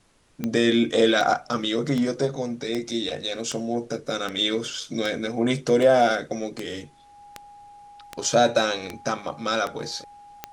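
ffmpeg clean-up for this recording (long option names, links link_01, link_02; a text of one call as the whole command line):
ffmpeg -i in.wav -af "adeclick=threshold=4,bandreject=frequency=820:width=30,agate=range=-21dB:threshold=-39dB" out.wav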